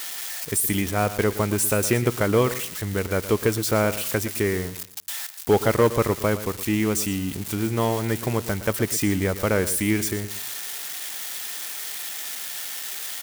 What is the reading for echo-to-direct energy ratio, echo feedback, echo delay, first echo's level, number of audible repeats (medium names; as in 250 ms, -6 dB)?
-13.5 dB, 25%, 117 ms, -14.0 dB, 2